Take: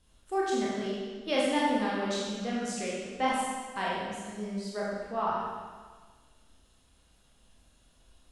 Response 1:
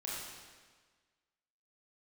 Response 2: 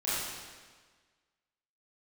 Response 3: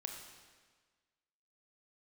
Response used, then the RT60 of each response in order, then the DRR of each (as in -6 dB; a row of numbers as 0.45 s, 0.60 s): 1; 1.5 s, 1.5 s, 1.5 s; -6.5 dB, -11.5 dB, 2.5 dB